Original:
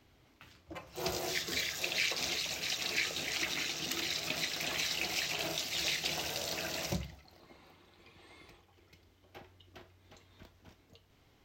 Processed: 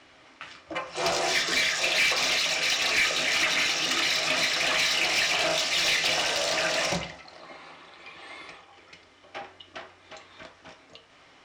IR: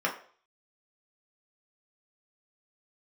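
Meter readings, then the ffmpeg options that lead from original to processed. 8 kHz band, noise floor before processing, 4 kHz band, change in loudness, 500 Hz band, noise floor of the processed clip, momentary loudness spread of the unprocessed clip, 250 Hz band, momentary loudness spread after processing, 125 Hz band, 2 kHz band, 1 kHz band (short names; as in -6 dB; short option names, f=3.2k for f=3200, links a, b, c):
+8.5 dB, -66 dBFS, +10.0 dB, +10.5 dB, +11.5 dB, -56 dBFS, 6 LU, +5.5 dB, 19 LU, +2.0 dB, +12.5 dB, +13.0 dB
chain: -filter_complex "[0:a]asplit=2[a][b];[1:a]atrim=start_sample=2205[c];[b][c]afir=irnorm=-1:irlink=0,volume=-10.5dB[d];[a][d]amix=inputs=2:normalize=0,aresample=22050,aresample=44100,asplit=2[e][f];[f]highpass=f=720:p=1,volume=18dB,asoftclip=type=tanh:threshold=-14.5dB[g];[e][g]amix=inputs=2:normalize=0,lowpass=f=5.5k:p=1,volume=-6dB"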